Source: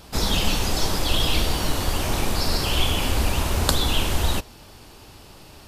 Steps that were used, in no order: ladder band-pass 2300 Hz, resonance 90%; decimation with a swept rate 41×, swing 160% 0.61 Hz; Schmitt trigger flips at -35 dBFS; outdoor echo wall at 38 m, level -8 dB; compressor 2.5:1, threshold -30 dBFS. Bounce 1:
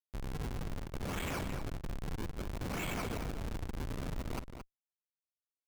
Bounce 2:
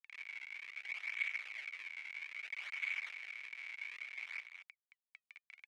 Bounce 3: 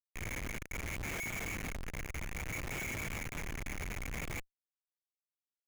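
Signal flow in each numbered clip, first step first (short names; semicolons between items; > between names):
ladder band-pass > decimation with a swept rate > compressor > Schmitt trigger > outdoor echo; compressor > Schmitt trigger > outdoor echo > decimation with a swept rate > ladder band-pass; decimation with a swept rate > ladder band-pass > compressor > outdoor echo > Schmitt trigger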